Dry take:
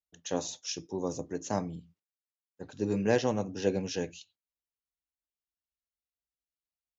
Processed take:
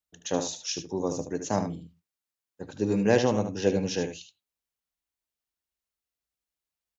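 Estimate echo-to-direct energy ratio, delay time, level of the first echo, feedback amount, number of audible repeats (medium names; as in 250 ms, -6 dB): -9.0 dB, 75 ms, -9.0 dB, no regular repeats, 1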